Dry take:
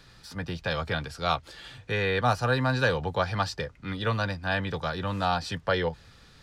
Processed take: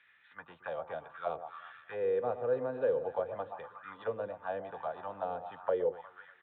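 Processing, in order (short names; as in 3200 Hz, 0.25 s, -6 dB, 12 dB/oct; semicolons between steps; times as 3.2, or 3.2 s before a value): downsampling 8000 Hz; echo with dull and thin repeats by turns 0.12 s, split 1200 Hz, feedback 70%, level -11 dB; auto-wah 480–2100 Hz, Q 3.8, down, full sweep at -23 dBFS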